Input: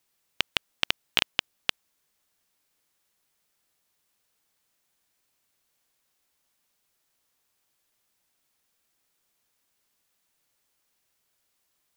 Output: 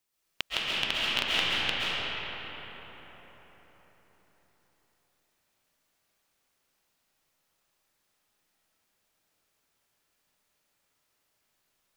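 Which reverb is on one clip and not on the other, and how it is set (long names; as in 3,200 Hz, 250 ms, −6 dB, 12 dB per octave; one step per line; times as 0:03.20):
comb and all-pass reverb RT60 4.8 s, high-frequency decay 0.5×, pre-delay 95 ms, DRR −9 dB
level −7 dB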